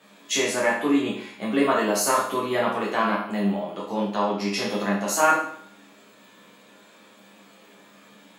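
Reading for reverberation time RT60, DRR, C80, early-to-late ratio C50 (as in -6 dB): 0.60 s, -6.5 dB, 8.0 dB, 4.0 dB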